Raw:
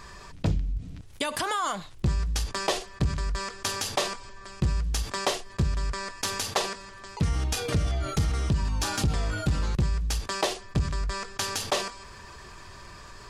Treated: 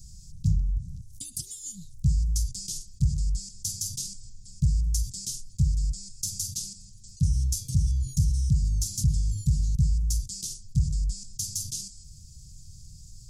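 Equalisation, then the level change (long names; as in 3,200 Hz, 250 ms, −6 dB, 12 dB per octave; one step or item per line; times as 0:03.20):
elliptic band-stop filter 150–6,000 Hz, stop band 70 dB
+3.5 dB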